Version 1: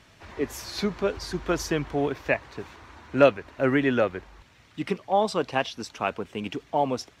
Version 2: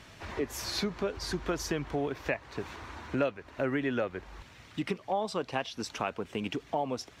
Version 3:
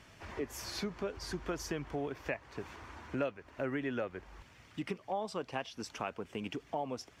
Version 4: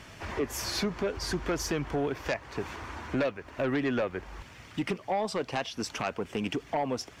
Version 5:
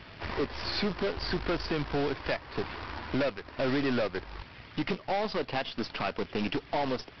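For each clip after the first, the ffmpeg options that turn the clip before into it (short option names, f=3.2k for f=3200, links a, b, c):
-af "acompressor=threshold=-35dB:ratio=3,volume=3.5dB"
-af "equalizer=f=3.9k:t=o:w=0.22:g=-6.5,volume=-5.5dB"
-af "aeval=exprs='0.0841*sin(PI/2*2.24*val(0)/0.0841)':c=same,volume=-1.5dB"
-af "aeval=exprs='0.075*(cos(1*acos(clip(val(0)/0.075,-1,1)))-cos(1*PI/2))+0.00944*(cos(6*acos(clip(val(0)/0.075,-1,1)))-cos(6*PI/2))':c=same,aresample=11025,acrusher=bits=2:mode=log:mix=0:aa=0.000001,aresample=44100"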